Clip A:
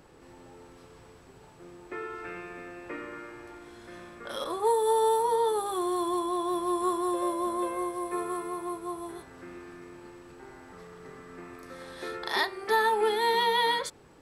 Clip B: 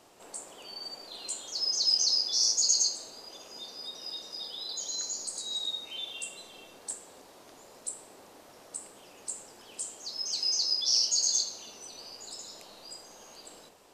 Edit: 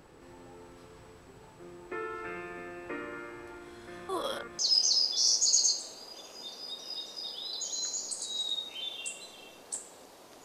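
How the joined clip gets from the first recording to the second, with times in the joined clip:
clip A
4.09–4.59 reverse
4.59 switch to clip B from 1.75 s

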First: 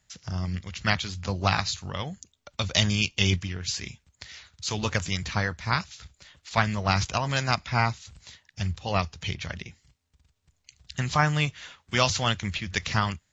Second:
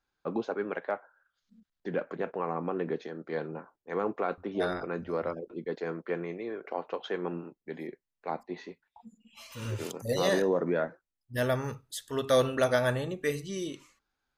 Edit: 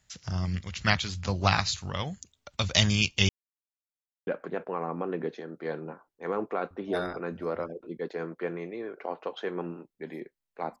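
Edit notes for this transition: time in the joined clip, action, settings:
first
3.29–4.27 mute
4.27 switch to second from 1.94 s

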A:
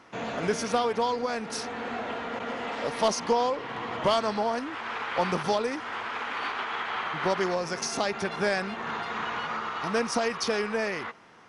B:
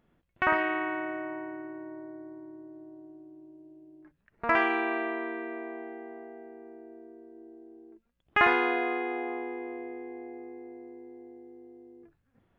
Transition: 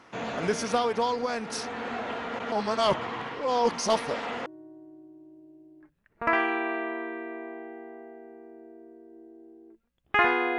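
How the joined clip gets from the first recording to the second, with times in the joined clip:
A
2.52–4.46 reverse
4.46 switch to B from 2.68 s

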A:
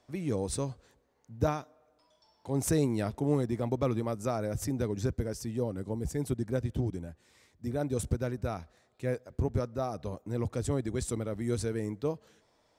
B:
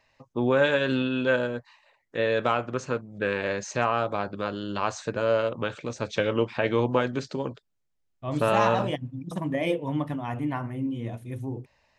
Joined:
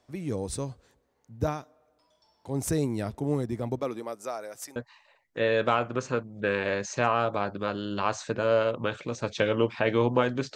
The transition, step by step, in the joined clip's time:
A
3.78–4.76 HPF 260 Hz -> 930 Hz
4.76 switch to B from 1.54 s

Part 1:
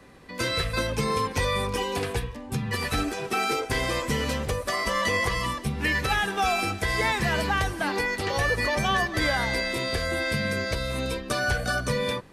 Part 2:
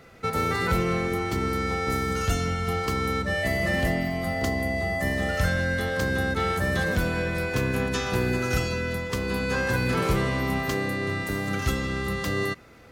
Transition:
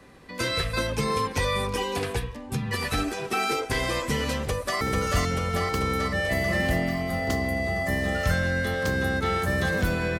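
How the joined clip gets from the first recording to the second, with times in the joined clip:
part 1
4.42–4.81 echo throw 0.44 s, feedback 70%, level -3 dB
4.81 switch to part 2 from 1.95 s

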